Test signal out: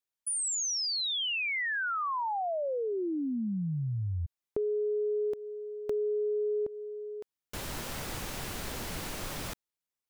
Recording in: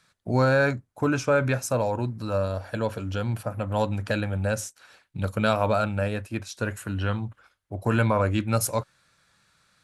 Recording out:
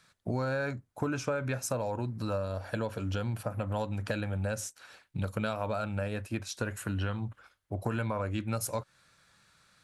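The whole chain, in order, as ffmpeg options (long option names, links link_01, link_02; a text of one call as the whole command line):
ffmpeg -i in.wav -af "acompressor=threshold=-29dB:ratio=6" out.wav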